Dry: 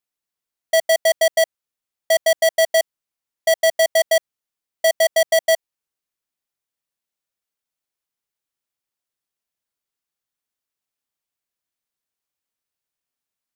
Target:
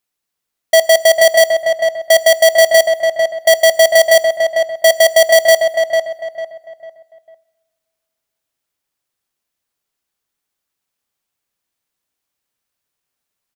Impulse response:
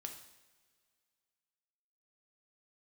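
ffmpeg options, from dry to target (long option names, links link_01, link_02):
-filter_complex "[0:a]acrusher=bits=7:mode=log:mix=0:aa=0.000001,asplit=2[link_01][link_02];[link_02]adelay=449,lowpass=frequency=2100:poles=1,volume=-4dB,asplit=2[link_03][link_04];[link_04]adelay=449,lowpass=frequency=2100:poles=1,volume=0.35,asplit=2[link_05][link_06];[link_06]adelay=449,lowpass=frequency=2100:poles=1,volume=0.35,asplit=2[link_07][link_08];[link_08]adelay=449,lowpass=frequency=2100:poles=1,volume=0.35[link_09];[link_01][link_03][link_05][link_07][link_09]amix=inputs=5:normalize=0,asplit=2[link_10][link_11];[1:a]atrim=start_sample=2205[link_12];[link_11][link_12]afir=irnorm=-1:irlink=0,volume=-6.5dB[link_13];[link_10][link_13]amix=inputs=2:normalize=0,volume=5.5dB"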